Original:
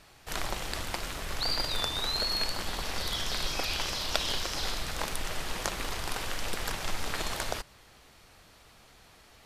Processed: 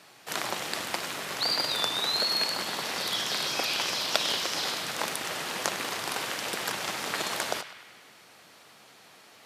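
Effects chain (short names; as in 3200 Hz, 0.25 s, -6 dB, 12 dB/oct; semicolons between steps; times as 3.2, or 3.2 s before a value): Bessel high-pass 200 Hz, order 8; on a send: narrowing echo 0.101 s, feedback 69%, band-pass 2100 Hz, level -10 dB; on the sum: gain +3.5 dB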